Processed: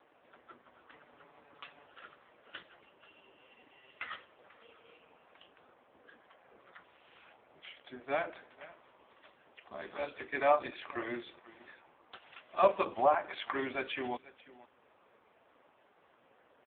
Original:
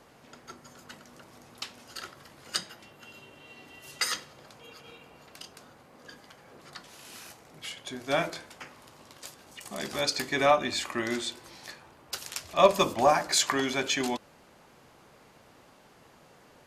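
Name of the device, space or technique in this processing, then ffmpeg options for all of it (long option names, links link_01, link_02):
satellite phone: -filter_complex "[0:a]asettb=1/sr,asplit=3[link_01][link_02][link_03];[link_01]atrim=end=0.934[link_04];[link_02]atrim=start=0.93:end=1.86,asetpts=PTS-STARTPTS,afade=type=in:duration=0.004:curve=qsin,afade=type=out:start_time=0.926:duration=0.004:curve=qsin,aecho=1:1:7:0.9,atrim=end_sample=41013[link_05];[link_03]atrim=start=1.856[link_06];[link_04][link_05]acrossfade=duration=0.004:curve1=hsin:curve2=qsin[link_07];[link_07][link_06]acrossfade=duration=0.004:curve1=qsin:curve2=hsin,highpass=320,lowpass=3200,aecho=1:1:488:0.106,volume=-3.5dB" -ar 8000 -c:a libopencore_amrnb -b:a 5150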